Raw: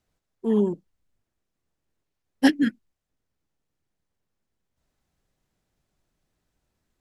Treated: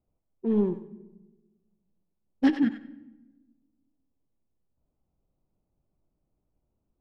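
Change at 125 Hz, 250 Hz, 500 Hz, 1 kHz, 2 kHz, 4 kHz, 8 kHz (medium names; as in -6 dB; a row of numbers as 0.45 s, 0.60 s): no reading, -2.5 dB, -4.0 dB, -5.5 dB, -8.5 dB, -11.0 dB, under -15 dB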